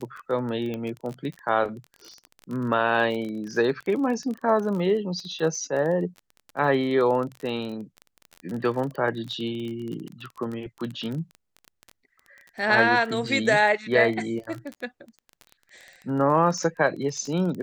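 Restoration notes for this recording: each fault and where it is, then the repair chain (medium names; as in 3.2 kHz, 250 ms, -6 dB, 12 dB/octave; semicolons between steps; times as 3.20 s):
crackle 23 per s -31 dBFS
0.74 s: pop -20 dBFS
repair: de-click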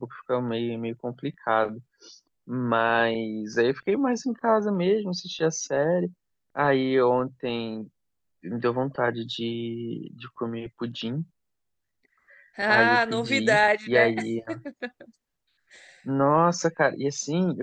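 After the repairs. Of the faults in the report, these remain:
nothing left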